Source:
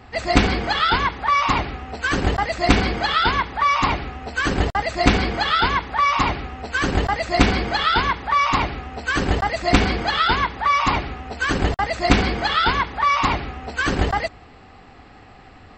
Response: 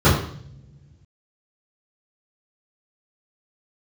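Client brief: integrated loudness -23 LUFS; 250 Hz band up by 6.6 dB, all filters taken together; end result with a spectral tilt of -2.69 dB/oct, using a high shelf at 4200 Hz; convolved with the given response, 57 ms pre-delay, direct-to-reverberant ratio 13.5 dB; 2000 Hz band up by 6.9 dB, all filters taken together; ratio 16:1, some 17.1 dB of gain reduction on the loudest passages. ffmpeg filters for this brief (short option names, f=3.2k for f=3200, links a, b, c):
-filter_complex "[0:a]equalizer=f=250:t=o:g=8,equalizer=f=2k:t=o:g=7,highshelf=f=4.2k:g=7,acompressor=threshold=-21dB:ratio=16,asplit=2[a][b];[1:a]atrim=start_sample=2205,adelay=57[c];[b][c]afir=irnorm=-1:irlink=0,volume=-37dB[d];[a][d]amix=inputs=2:normalize=0,volume=1.5dB"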